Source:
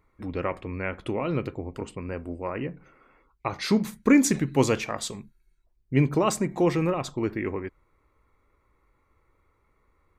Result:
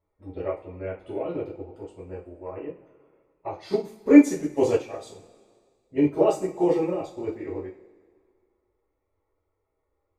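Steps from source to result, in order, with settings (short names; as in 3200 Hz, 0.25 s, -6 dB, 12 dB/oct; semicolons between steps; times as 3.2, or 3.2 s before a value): bin magnitudes rounded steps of 15 dB; band shelf 520 Hz +11 dB; two-slope reverb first 0.36 s, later 2 s, from -18 dB, DRR -7.5 dB; upward expander 1.5:1, over -20 dBFS; gain -11 dB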